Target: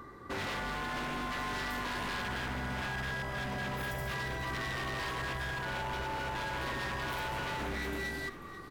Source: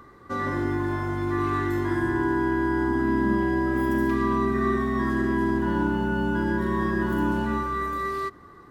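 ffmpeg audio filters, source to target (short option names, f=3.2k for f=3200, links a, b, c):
-filter_complex "[0:a]afftfilt=real='re*lt(hypot(re,im),0.2)':imag='im*lt(hypot(re,im),0.2)':win_size=1024:overlap=0.75,aeval=exprs='0.0266*(abs(mod(val(0)/0.0266+3,4)-2)-1)':c=same,asplit=4[a][b][c][d];[b]adelay=490,afreqshift=-50,volume=-14dB[e];[c]adelay=980,afreqshift=-100,volume=-24.2dB[f];[d]adelay=1470,afreqshift=-150,volume=-34.3dB[g];[a][e][f][g]amix=inputs=4:normalize=0"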